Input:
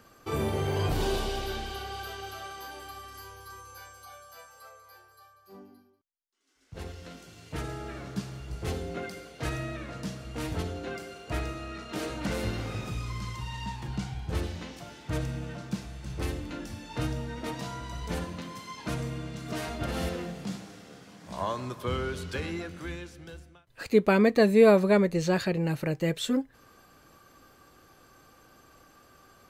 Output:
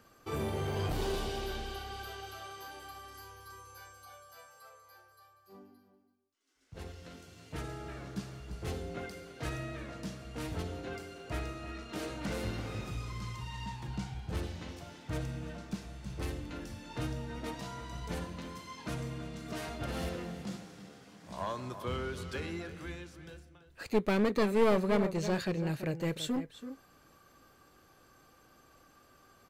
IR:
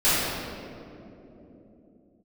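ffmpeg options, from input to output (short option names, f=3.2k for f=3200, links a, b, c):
-filter_complex "[0:a]asplit=2[a][b];[b]adelay=332.4,volume=-12dB,highshelf=f=4k:g=-7.48[c];[a][c]amix=inputs=2:normalize=0,aeval=exprs='clip(val(0),-1,0.0562)':c=same,volume=-5dB"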